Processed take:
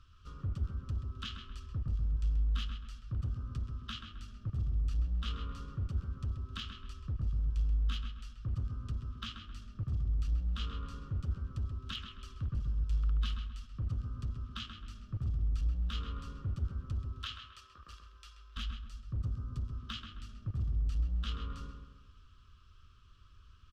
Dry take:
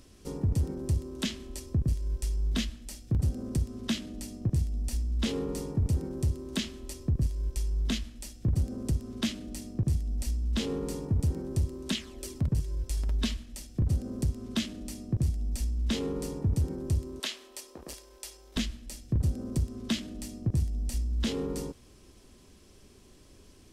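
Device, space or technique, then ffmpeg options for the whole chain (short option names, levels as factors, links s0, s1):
limiter into clipper: -filter_complex "[0:a]firequalizer=gain_entry='entry(100,0);entry(150,-13);entry(310,-23);entry(560,-23);entry(860,-26);entry(1200,10);entry(2000,-14);entry(2900,-1);entry(4400,-10);entry(9600,-28)':delay=0.05:min_phase=1,alimiter=level_in=1.41:limit=0.0631:level=0:latency=1:release=17,volume=0.708,asoftclip=type=hard:threshold=0.0355,asplit=2[s0][s1];[s1]adelay=132,lowpass=f=2200:p=1,volume=0.562,asplit=2[s2][s3];[s3]adelay=132,lowpass=f=2200:p=1,volume=0.46,asplit=2[s4][s5];[s5]adelay=132,lowpass=f=2200:p=1,volume=0.46,asplit=2[s6][s7];[s7]adelay=132,lowpass=f=2200:p=1,volume=0.46,asplit=2[s8][s9];[s9]adelay=132,lowpass=f=2200:p=1,volume=0.46,asplit=2[s10][s11];[s11]adelay=132,lowpass=f=2200:p=1,volume=0.46[s12];[s0][s2][s4][s6][s8][s10][s12]amix=inputs=7:normalize=0,asettb=1/sr,asplit=3[s13][s14][s15];[s13]atrim=end=18.834[s16];[s14]atrim=start=18.83:end=19.73,asetpts=PTS-STARTPTS,afade=t=in:d=0.004:c=qsin,afade=t=out:st=0.896:d=0.004:c=qsin,equalizer=f=2300:t=o:w=1.6:g=-4[s17];[s15]atrim=start=19.726[s18];[s16][s17]acrossfade=d=0.004:c1=hsin:c2=qsin[s19];[s19][s18]acrossfade=d=0.004:c1=qsin:c2=hsin,volume=0.841"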